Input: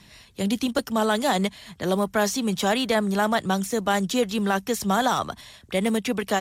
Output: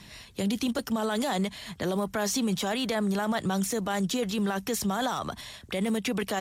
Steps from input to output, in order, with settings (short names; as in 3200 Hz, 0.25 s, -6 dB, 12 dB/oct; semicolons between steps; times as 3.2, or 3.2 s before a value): limiter -23 dBFS, peak gain reduction 12 dB; gain +2.5 dB